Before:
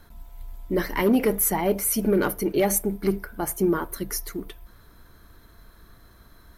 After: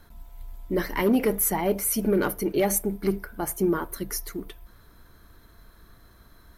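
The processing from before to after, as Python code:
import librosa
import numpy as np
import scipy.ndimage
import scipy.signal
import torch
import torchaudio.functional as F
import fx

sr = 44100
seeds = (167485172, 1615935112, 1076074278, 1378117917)

y = x * librosa.db_to_amplitude(-1.5)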